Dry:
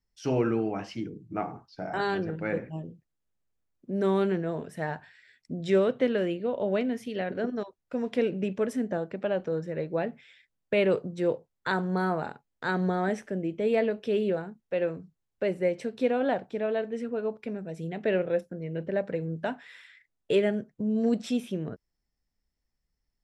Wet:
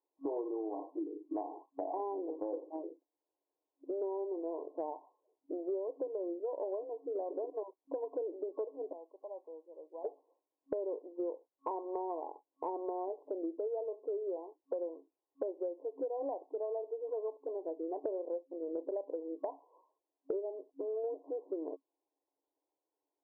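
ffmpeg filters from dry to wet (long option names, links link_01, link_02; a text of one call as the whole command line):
ffmpeg -i in.wav -filter_complex "[0:a]asplit=3[link_01][link_02][link_03];[link_01]afade=type=out:start_time=8.91:duration=0.02[link_04];[link_02]bandpass=frequency=5900:width_type=q:width=1.3,afade=type=in:start_time=8.91:duration=0.02,afade=type=out:start_time=10.04:duration=0.02[link_05];[link_03]afade=type=in:start_time=10.04:duration=0.02[link_06];[link_04][link_05][link_06]amix=inputs=3:normalize=0,afftfilt=real='re*between(b*sr/4096,270,1100)':imag='im*between(b*sr/4096,270,1100)':win_size=4096:overlap=0.75,acompressor=threshold=-41dB:ratio=10,volume=6dB" out.wav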